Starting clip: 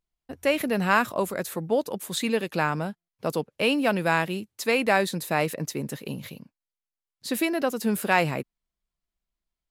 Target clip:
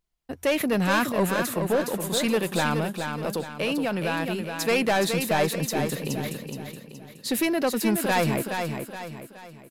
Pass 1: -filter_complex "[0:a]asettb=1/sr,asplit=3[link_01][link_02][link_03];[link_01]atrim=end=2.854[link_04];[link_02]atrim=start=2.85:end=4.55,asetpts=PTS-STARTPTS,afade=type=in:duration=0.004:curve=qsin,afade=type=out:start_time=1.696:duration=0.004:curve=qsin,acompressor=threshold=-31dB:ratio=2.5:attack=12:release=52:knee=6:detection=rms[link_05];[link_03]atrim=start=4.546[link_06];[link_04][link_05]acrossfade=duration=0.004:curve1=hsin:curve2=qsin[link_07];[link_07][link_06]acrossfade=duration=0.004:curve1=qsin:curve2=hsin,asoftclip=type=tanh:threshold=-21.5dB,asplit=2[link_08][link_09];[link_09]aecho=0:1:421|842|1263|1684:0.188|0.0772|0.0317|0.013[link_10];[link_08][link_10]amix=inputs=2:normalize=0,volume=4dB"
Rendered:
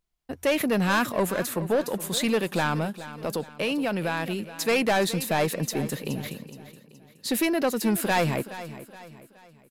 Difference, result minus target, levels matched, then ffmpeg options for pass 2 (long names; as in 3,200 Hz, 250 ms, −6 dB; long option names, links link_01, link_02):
echo-to-direct −8.5 dB
-filter_complex "[0:a]asettb=1/sr,asplit=3[link_01][link_02][link_03];[link_01]atrim=end=2.854[link_04];[link_02]atrim=start=2.85:end=4.55,asetpts=PTS-STARTPTS,afade=type=in:duration=0.004:curve=qsin,afade=type=out:start_time=1.696:duration=0.004:curve=qsin,acompressor=threshold=-31dB:ratio=2.5:attack=12:release=52:knee=6:detection=rms[link_05];[link_03]atrim=start=4.546[link_06];[link_04][link_05]acrossfade=duration=0.004:curve1=hsin:curve2=qsin[link_07];[link_07][link_06]acrossfade=duration=0.004:curve1=qsin:curve2=hsin,asoftclip=type=tanh:threshold=-21.5dB,asplit=2[link_08][link_09];[link_09]aecho=0:1:421|842|1263|1684|2105:0.501|0.205|0.0842|0.0345|0.0142[link_10];[link_08][link_10]amix=inputs=2:normalize=0,volume=4dB"